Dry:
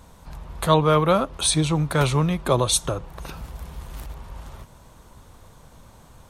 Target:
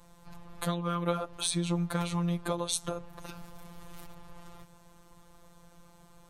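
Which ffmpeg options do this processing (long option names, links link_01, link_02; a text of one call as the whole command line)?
ffmpeg -i in.wav -af "acompressor=threshold=-20dB:ratio=6,afftfilt=real='hypot(re,im)*cos(PI*b)':imag='0':win_size=1024:overlap=0.75,volume=-4dB" out.wav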